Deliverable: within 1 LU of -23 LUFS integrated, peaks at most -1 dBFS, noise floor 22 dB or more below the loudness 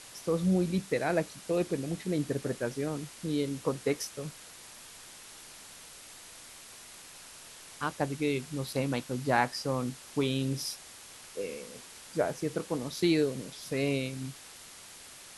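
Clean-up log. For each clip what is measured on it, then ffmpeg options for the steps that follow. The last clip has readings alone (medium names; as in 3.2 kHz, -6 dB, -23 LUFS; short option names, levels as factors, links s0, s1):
noise floor -50 dBFS; noise floor target -55 dBFS; loudness -32.5 LUFS; peak level -10.5 dBFS; loudness target -23.0 LUFS
-> -af "afftdn=nr=6:nf=-50"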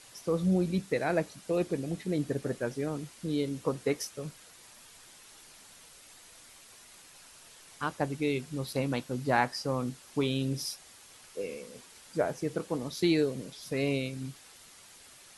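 noise floor -55 dBFS; loudness -32.0 LUFS; peak level -10.5 dBFS; loudness target -23.0 LUFS
-> -af "volume=2.82"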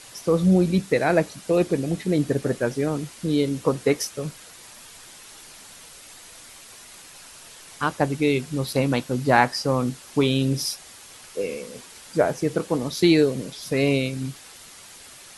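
loudness -23.0 LUFS; peak level -1.5 dBFS; noise floor -46 dBFS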